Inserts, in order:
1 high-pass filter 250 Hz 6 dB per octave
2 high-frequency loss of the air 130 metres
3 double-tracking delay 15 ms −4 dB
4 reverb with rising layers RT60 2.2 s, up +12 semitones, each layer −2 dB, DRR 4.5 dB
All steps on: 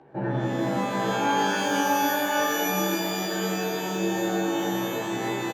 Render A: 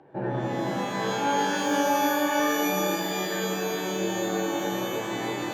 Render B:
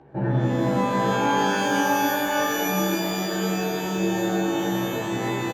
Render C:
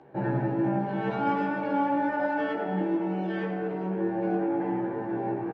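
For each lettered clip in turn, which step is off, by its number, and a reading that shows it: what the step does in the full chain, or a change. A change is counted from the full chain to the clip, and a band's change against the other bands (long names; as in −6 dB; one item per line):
3, 125 Hz band −2.0 dB
1, 125 Hz band +4.5 dB
4, 4 kHz band −18.5 dB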